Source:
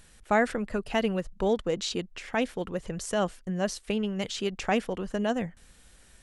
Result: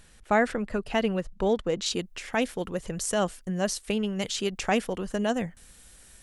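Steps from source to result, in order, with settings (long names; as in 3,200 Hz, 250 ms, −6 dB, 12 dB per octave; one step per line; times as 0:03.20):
high-shelf EQ 7,200 Hz −3 dB, from 0:01.86 +10.5 dB
level +1 dB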